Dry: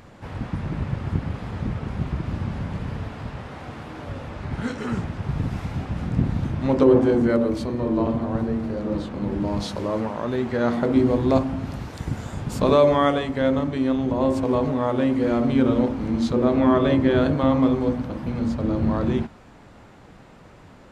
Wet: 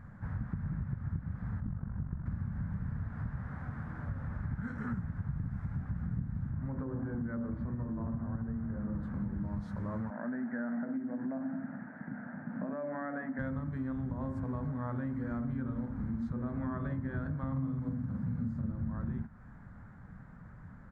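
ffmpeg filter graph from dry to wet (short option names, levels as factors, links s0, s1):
-filter_complex "[0:a]asettb=1/sr,asplit=3[s0][s1][s2];[s0]atrim=end=1.604[s3];[s1]atrim=start=1.6:end=2.26,asetpts=PTS-STARTPTS,afade=t=in:d=0.004:c=qsin,afade=t=out:st=0.656:d=0.004:c=qsin,lowpass=1500,tremolo=f=47:d=0.75[s4];[s2]atrim=start=2.256[s5];[s3][s4]acrossfade=d=0.004:c1=hsin:c2=qsin[s6];[s6][s5]acrossfade=d=0.004:c1=qsin:c2=hsin,asettb=1/sr,asplit=3[s7][s8][s9];[s7]atrim=end=6.504[s10];[s8]atrim=start=6.5:end=9.03,asetpts=PTS-STARTPTS,afade=t=in:d=0.004:c=qsin,afade=t=out:st=2.526:d=0.004:c=qsin,acompressor=threshold=0.1:ratio=3:attack=3.2:release=140:knee=1:detection=peak,lowpass=2200[s11];[s9]atrim=start=9.026[s12];[s10][s11]acrossfade=d=0.004:c1=hsin:c2=qsin[s13];[s13][s12]acrossfade=d=0.004:c1=qsin:c2=hsin,asettb=1/sr,asplit=3[s14][s15][s16];[s14]atrim=end=10.104[s17];[s15]atrim=start=10.1:end=13.39,asetpts=PTS-STARTPTS,afade=t=in:d=0.004:c=qsin,afade=t=out:st=3.286:d=0.004:c=qsin,acompressor=threshold=0.1:ratio=6:attack=3.2:release=140:knee=1:detection=peak,highpass=f=230:w=0.5412,highpass=f=230:w=1.3066,equalizer=f=250:t=q:w=4:g=6,equalizer=f=410:t=q:w=4:g=-8,equalizer=f=640:t=q:w=4:g=6,equalizer=f=1100:t=q:w=4:g=-9,equalizer=f=1700:t=q:w=4:g=4,lowpass=f=2000:w=0.5412,lowpass=f=2000:w=1.3066[s18];[s16]atrim=start=13.386[s19];[s17][s18]acrossfade=d=0.004:c1=hsin:c2=qsin[s20];[s20][s19]acrossfade=d=0.004:c1=qsin:c2=hsin,asettb=1/sr,asplit=3[s21][s22][s23];[s21]atrim=end=17.524[s24];[s22]atrim=start=17.52:end=18.72,asetpts=PTS-STARTPTS,afade=t=in:d=0.004:c=qsin,afade=t=out:st=1.196:d=0.004:c=qsin,highpass=110,bass=f=250:g=8,treble=f=4000:g=6,asplit=2[s25][s26];[s26]adelay=45,volume=0.708[s27];[s25][s27]amix=inputs=2:normalize=0,atrim=end_sample=52920[s28];[s23]atrim=start=18.716[s29];[s24][s28]acrossfade=d=0.004:c1=hsin:c2=qsin[s30];[s30][s29]acrossfade=d=0.004:c1=qsin:c2=hsin,firequalizer=gain_entry='entry(190,0);entry(340,-18);entry(1600,-3);entry(2700,-28);entry(8200,-23)':delay=0.05:min_phase=1,acompressor=threshold=0.0224:ratio=6"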